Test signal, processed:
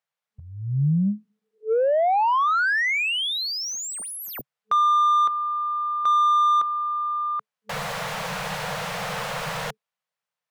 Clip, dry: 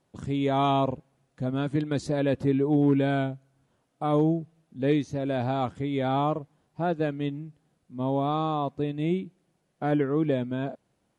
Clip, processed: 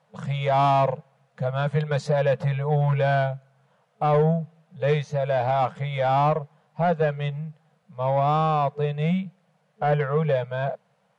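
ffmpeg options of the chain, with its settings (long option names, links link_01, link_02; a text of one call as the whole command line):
ffmpeg -i in.wav -filter_complex "[0:a]afftfilt=real='re*(1-between(b*sr/4096,210,440))':imag='im*(1-between(b*sr/4096,210,440))':win_size=4096:overlap=0.75,asplit=2[link_01][link_02];[link_02]highpass=frequency=720:poles=1,volume=16dB,asoftclip=type=tanh:threshold=-14.5dB[link_03];[link_01][link_03]amix=inputs=2:normalize=0,lowpass=frequency=1400:poles=1,volume=-6dB,lowshelf=frequency=110:width_type=q:width=3:gain=-8,volume=2.5dB" out.wav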